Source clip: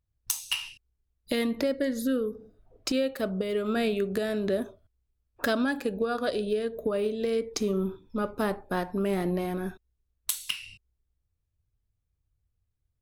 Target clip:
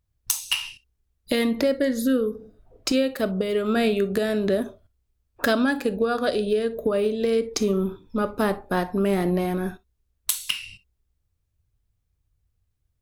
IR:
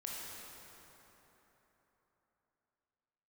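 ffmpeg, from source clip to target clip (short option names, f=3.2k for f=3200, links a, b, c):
-filter_complex "[0:a]asplit=2[a][b];[1:a]atrim=start_sample=2205,atrim=end_sample=3087[c];[b][c]afir=irnorm=-1:irlink=0,volume=-5dB[d];[a][d]amix=inputs=2:normalize=0,volume=3dB"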